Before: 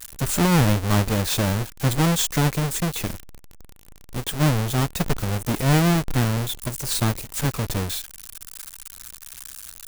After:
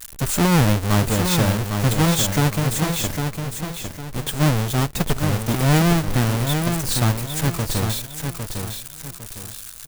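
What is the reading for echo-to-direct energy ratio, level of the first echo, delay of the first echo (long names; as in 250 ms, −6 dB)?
−5.5 dB, −6.0 dB, 805 ms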